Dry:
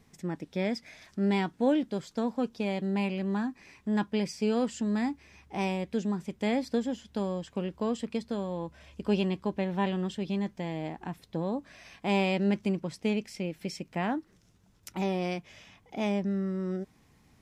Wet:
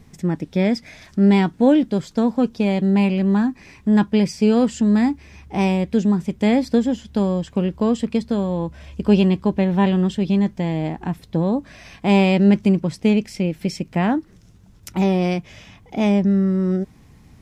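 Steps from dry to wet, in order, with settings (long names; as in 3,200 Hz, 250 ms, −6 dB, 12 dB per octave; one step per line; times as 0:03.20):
low-shelf EQ 230 Hz +9.5 dB
level +8 dB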